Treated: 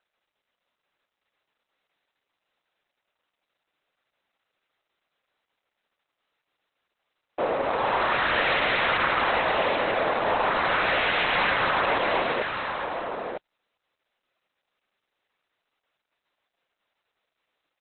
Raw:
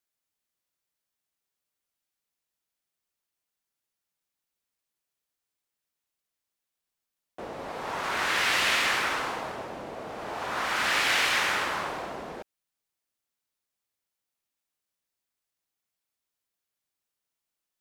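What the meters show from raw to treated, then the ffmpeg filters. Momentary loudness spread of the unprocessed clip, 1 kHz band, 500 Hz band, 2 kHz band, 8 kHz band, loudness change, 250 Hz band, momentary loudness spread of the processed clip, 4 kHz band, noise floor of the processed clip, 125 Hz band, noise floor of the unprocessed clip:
17 LU, +7.0 dB, +10.5 dB, +3.0 dB, under -40 dB, +2.5 dB, +6.5 dB, 9 LU, 0.0 dB, -84 dBFS, +7.0 dB, under -85 dBFS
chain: -filter_complex "[0:a]asplit=2[a][b];[b]highpass=f=720:p=1,volume=27dB,asoftclip=type=tanh:threshold=-12.5dB[c];[a][c]amix=inputs=2:normalize=0,lowpass=f=1.7k:p=1,volume=-6dB,equalizer=f=530:w=3.6:g=3.5,aecho=1:1:951:0.501,volume=-1.5dB" -ar 48000 -c:a libopus -b:a 8k

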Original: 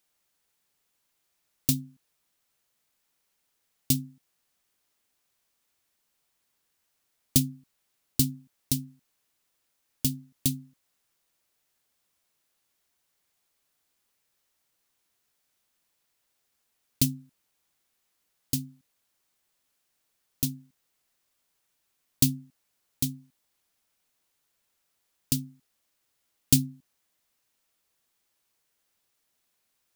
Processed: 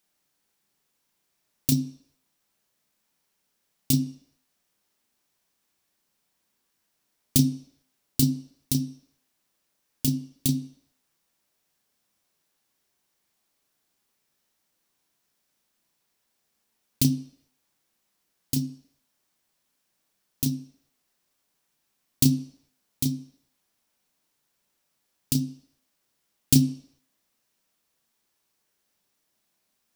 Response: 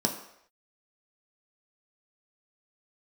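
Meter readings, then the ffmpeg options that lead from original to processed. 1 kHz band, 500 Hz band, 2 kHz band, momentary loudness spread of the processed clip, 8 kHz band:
n/a, +3.5 dB, +0.5 dB, 15 LU, +0.5 dB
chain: -filter_complex "[0:a]asplit=2[a][b];[1:a]atrim=start_sample=2205,lowpass=6.1k,adelay=31[c];[b][c]afir=irnorm=-1:irlink=0,volume=-13dB[d];[a][d]amix=inputs=2:normalize=0"

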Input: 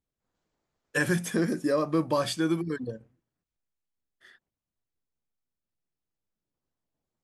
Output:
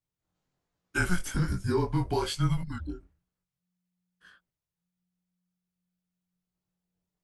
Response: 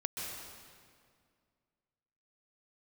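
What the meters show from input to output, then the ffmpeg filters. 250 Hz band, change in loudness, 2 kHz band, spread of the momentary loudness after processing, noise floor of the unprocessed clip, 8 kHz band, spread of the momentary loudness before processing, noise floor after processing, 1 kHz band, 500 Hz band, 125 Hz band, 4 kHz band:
-4.5 dB, -2.0 dB, -1.5 dB, 11 LU, under -85 dBFS, -2.0 dB, 8 LU, under -85 dBFS, -1.0 dB, -5.0 dB, +5.0 dB, -1.0 dB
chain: -af "flanger=delay=18.5:depth=4.6:speed=1.2,afreqshift=-180,volume=1.5dB"

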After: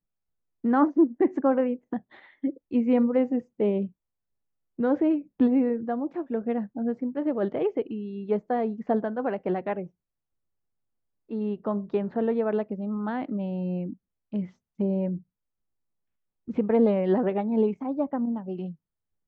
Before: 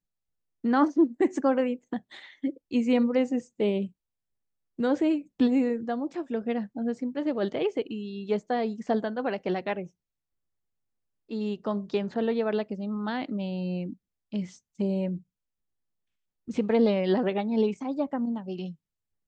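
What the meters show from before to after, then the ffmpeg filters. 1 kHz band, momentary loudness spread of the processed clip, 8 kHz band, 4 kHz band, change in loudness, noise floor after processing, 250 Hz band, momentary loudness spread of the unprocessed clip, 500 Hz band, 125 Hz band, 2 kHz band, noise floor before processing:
+1.0 dB, 12 LU, n/a, under -10 dB, +1.5 dB, -85 dBFS, +1.5 dB, 12 LU, +1.5 dB, +1.5 dB, -3.5 dB, under -85 dBFS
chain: -af "lowpass=1.5k,volume=1.5dB"

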